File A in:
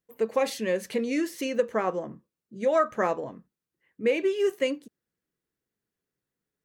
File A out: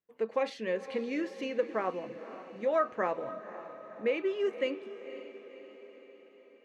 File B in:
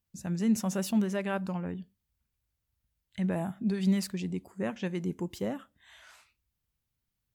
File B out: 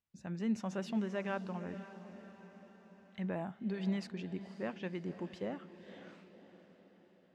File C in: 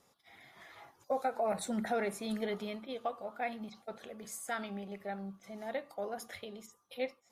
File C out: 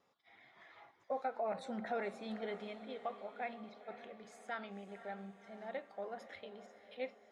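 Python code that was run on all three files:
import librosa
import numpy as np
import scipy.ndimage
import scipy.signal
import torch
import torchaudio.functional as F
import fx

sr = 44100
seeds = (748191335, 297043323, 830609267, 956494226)

p1 = scipy.signal.sosfilt(scipy.signal.butter(2, 3500.0, 'lowpass', fs=sr, output='sos'), x)
p2 = fx.low_shelf(p1, sr, hz=150.0, db=-10.5)
p3 = p2 + fx.echo_diffused(p2, sr, ms=521, feedback_pct=55, wet_db=-13, dry=0)
y = p3 * 10.0 ** (-4.5 / 20.0)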